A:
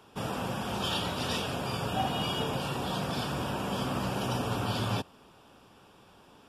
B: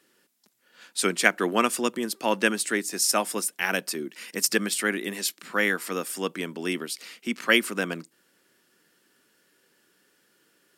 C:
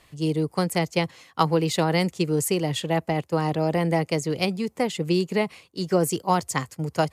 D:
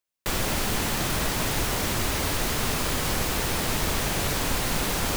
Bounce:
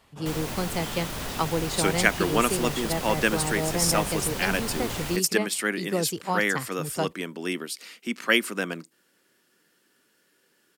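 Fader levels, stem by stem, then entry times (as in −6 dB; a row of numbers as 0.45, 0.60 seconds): −8.0, −1.0, −6.0, −8.0 decibels; 0.00, 0.80, 0.00, 0.00 seconds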